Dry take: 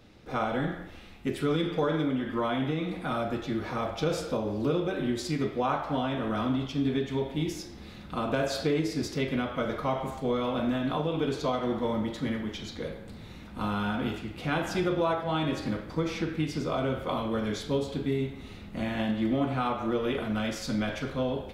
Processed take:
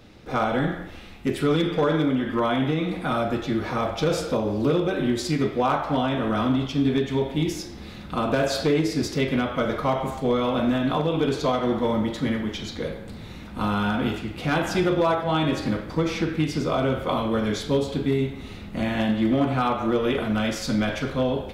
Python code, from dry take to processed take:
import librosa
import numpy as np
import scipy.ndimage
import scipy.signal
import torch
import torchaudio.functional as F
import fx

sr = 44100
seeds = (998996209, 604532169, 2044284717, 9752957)

y = np.clip(x, -10.0 ** (-20.0 / 20.0), 10.0 ** (-20.0 / 20.0))
y = F.gain(torch.from_numpy(y), 6.0).numpy()